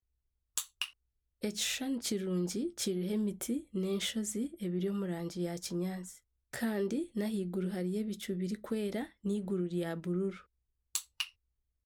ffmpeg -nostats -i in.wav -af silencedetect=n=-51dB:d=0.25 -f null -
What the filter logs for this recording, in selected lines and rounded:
silence_start: 0.00
silence_end: 0.57 | silence_duration: 0.57
silence_start: 0.90
silence_end: 1.42 | silence_duration: 0.52
silence_start: 6.18
silence_end: 6.53 | silence_duration: 0.35
silence_start: 10.41
silence_end: 10.95 | silence_duration: 0.54
silence_start: 11.29
silence_end: 11.85 | silence_duration: 0.56